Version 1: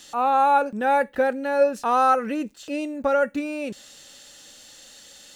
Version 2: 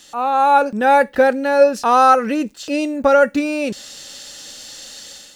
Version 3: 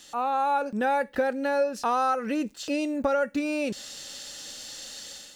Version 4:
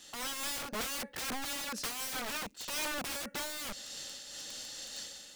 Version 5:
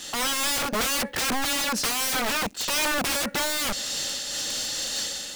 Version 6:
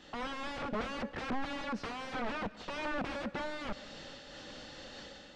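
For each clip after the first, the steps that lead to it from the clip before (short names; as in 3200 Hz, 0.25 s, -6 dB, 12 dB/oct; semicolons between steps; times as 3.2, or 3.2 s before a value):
AGC gain up to 8 dB; dynamic EQ 5000 Hz, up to +7 dB, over -47 dBFS, Q 2.2; gain +1 dB
compressor 3:1, threshold -20 dBFS, peak gain reduction 10.5 dB; gain -4.5 dB
wrapped overs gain 29.5 dB; noise-modulated level, depth 65%
sample leveller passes 2; gain +8.5 dB
tape spacing loss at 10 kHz 38 dB; on a send at -17.5 dB: reverb RT60 1.0 s, pre-delay 0.112 s; on the sum: gain -6 dB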